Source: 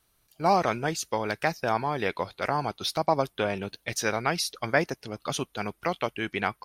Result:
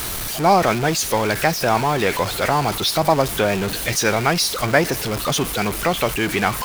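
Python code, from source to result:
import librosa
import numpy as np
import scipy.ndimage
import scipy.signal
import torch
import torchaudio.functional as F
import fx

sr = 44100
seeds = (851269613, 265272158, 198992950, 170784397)

y = x + 0.5 * 10.0 ** (-26.5 / 20.0) * np.sign(x)
y = F.gain(torch.from_numpy(y), 6.0).numpy()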